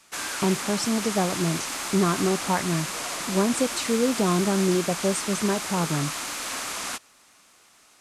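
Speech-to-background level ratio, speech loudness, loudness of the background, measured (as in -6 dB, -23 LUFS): 3.5 dB, -26.0 LUFS, -29.5 LUFS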